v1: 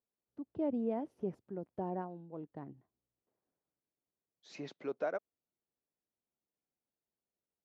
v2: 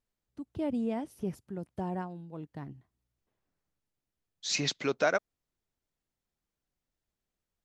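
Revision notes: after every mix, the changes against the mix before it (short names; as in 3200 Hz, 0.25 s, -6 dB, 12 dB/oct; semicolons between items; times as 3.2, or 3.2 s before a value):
second voice +7.0 dB; master: remove band-pass 480 Hz, Q 0.82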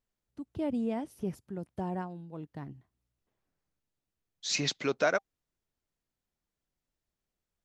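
second voice: add notch 790 Hz, Q 25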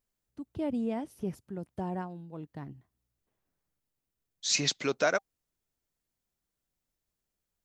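second voice: add high shelf 6900 Hz +11.5 dB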